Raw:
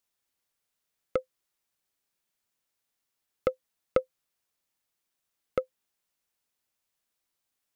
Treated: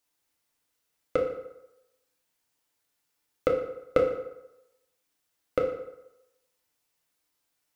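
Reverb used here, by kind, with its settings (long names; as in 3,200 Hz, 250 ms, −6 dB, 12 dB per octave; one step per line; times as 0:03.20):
feedback delay network reverb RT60 0.91 s, low-frequency decay 0.8×, high-frequency decay 0.7×, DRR −1 dB
level +1.5 dB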